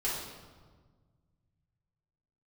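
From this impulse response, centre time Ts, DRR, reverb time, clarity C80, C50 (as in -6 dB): 74 ms, -8.0 dB, 1.5 s, 3.5 dB, 0.5 dB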